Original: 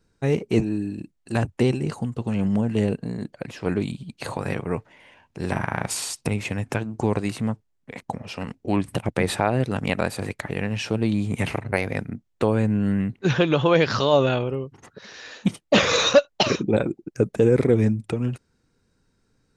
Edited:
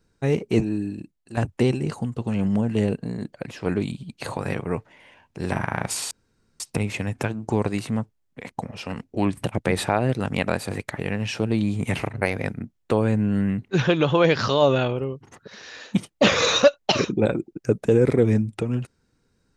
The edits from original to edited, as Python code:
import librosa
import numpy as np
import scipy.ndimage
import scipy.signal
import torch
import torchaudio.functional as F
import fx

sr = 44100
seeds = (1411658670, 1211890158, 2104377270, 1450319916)

y = fx.edit(x, sr, fx.fade_out_to(start_s=0.88, length_s=0.49, floor_db=-11.0),
    fx.insert_room_tone(at_s=6.11, length_s=0.49), tone=tone)